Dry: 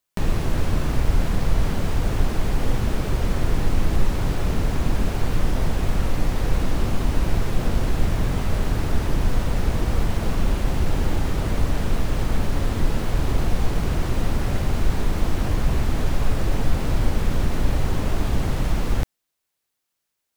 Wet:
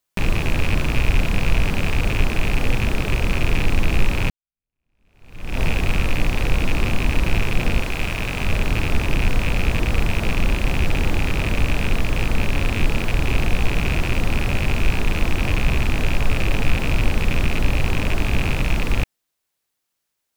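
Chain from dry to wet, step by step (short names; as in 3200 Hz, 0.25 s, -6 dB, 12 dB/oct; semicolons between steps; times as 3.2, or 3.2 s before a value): rattling part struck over -27 dBFS, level -15 dBFS; 4.3–5.6 fade in exponential; 7.81–8.41 low shelf 360 Hz -7 dB; gain +1.5 dB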